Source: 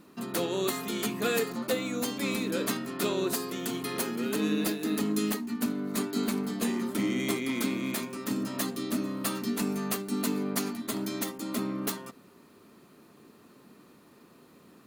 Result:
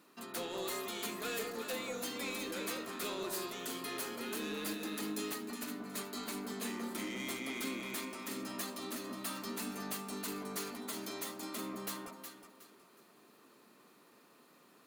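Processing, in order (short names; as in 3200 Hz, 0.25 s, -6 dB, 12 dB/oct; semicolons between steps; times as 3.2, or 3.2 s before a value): HPF 730 Hz 6 dB/oct; soft clip -31 dBFS, distortion -11 dB; on a send: echo with dull and thin repeats by turns 0.183 s, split 1100 Hz, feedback 54%, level -2 dB; on the sum: gain -3.5 dB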